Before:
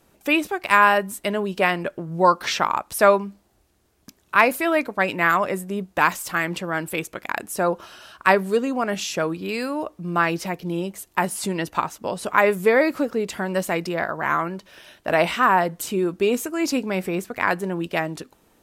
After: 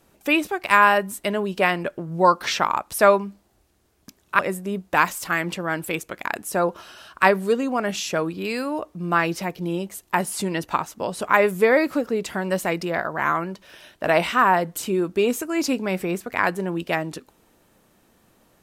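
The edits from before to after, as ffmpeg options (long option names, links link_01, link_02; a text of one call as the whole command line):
ffmpeg -i in.wav -filter_complex "[0:a]asplit=2[link_01][link_02];[link_01]atrim=end=4.392[link_03];[link_02]atrim=start=5.428[link_04];[link_03][link_04]acrossfade=duration=0.004:curve1=hsin:curve2=hsin" out.wav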